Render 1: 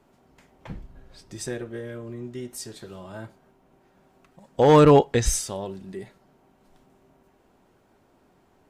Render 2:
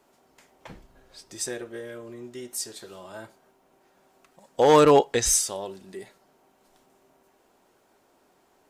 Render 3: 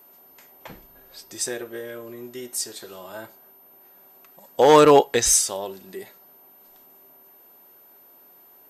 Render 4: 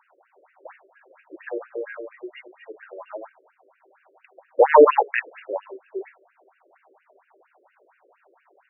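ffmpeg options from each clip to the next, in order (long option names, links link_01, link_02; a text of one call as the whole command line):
ffmpeg -i in.wav -af "bass=frequency=250:gain=-12,treble=frequency=4000:gain=6" out.wav
ffmpeg -i in.wav -af "aeval=exprs='val(0)+0.002*sin(2*PI*13000*n/s)':channel_layout=same,lowshelf=frequency=180:gain=-6.5,volume=4dB" out.wav
ffmpeg -i in.wav -af "afftfilt=real='re*between(b*sr/1024,410*pow(2100/410,0.5+0.5*sin(2*PI*4.3*pts/sr))/1.41,410*pow(2100/410,0.5+0.5*sin(2*PI*4.3*pts/sr))*1.41)':imag='im*between(b*sr/1024,410*pow(2100/410,0.5+0.5*sin(2*PI*4.3*pts/sr))/1.41,410*pow(2100/410,0.5+0.5*sin(2*PI*4.3*pts/sr))*1.41)':win_size=1024:overlap=0.75,volume=6dB" out.wav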